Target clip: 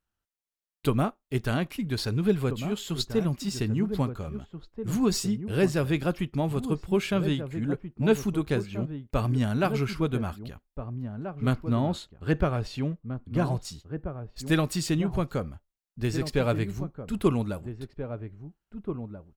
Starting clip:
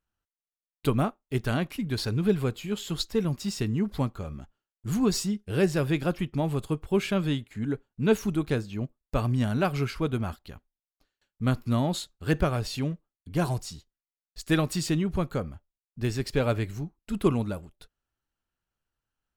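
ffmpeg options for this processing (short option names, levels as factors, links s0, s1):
-filter_complex "[0:a]asettb=1/sr,asplit=3[s0][s1][s2];[s0]atrim=end=11.534[s3];[s1]atrim=start=11.53:end=13.65,asetpts=PTS-STARTPTS,afade=t=in:d=0.004:c=qsin,afade=t=out:st=2.116:d=0.004:c=qsin,lowpass=f=2400:p=1[s4];[s2]atrim=start=13.646[s5];[s3][s4]acrossfade=d=0.004:c1=hsin:c2=qsin[s6];[s6][s5]acrossfade=d=0.004:c1=qsin:c2=hsin,asplit=2[s7][s8];[s8]adelay=1633,volume=0.355,highshelf=f=4000:g=-36.7[s9];[s7][s9]amix=inputs=2:normalize=0"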